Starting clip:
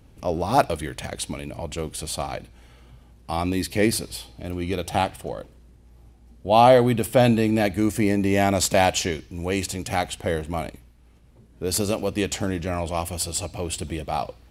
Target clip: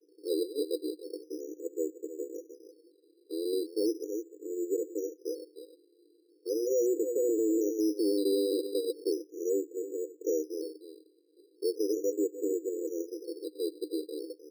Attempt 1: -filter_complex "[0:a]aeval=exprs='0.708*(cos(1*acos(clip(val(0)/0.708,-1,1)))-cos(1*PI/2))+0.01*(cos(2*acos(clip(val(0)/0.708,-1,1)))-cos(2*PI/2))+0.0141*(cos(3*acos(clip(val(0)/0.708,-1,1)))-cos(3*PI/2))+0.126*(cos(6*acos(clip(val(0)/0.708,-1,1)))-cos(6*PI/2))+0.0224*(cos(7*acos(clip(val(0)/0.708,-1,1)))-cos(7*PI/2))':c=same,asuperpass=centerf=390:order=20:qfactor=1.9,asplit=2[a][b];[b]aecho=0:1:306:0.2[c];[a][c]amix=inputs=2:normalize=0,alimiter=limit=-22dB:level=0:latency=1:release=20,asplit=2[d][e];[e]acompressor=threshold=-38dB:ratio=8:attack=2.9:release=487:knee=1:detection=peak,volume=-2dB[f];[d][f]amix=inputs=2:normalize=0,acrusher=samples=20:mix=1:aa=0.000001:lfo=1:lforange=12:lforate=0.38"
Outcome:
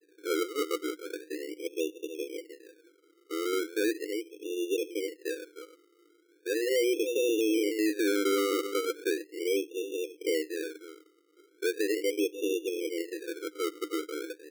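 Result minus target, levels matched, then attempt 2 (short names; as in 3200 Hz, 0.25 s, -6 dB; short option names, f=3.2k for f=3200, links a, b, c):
compressor: peak gain reduction -8.5 dB; decimation with a swept rate: distortion +9 dB
-filter_complex "[0:a]aeval=exprs='0.708*(cos(1*acos(clip(val(0)/0.708,-1,1)))-cos(1*PI/2))+0.01*(cos(2*acos(clip(val(0)/0.708,-1,1)))-cos(2*PI/2))+0.0141*(cos(3*acos(clip(val(0)/0.708,-1,1)))-cos(3*PI/2))+0.126*(cos(6*acos(clip(val(0)/0.708,-1,1)))-cos(6*PI/2))+0.0224*(cos(7*acos(clip(val(0)/0.708,-1,1)))-cos(7*PI/2))':c=same,asuperpass=centerf=390:order=20:qfactor=1.9,asplit=2[a][b];[b]aecho=0:1:306:0.2[c];[a][c]amix=inputs=2:normalize=0,alimiter=limit=-22dB:level=0:latency=1:release=20,asplit=2[d][e];[e]acompressor=threshold=-47.5dB:ratio=8:attack=2.9:release=487:knee=1:detection=peak,volume=-2dB[f];[d][f]amix=inputs=2:normalize=0,acrusher=samples=8:mix=1:aa=0.000001:lfo=1:lforange=4.8:lforate=0.38"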